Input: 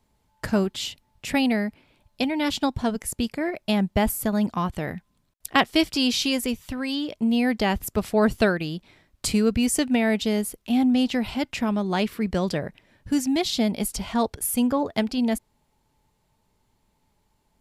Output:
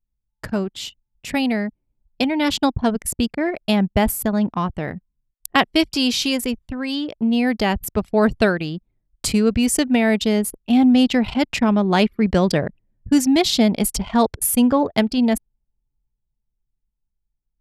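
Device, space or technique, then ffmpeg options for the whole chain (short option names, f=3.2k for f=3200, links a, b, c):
voice memo with heavy noise removal: -af "anlmdn=6.31,dynaudnorm=f=180:g=21:m=11.5dB,volume=-1dB"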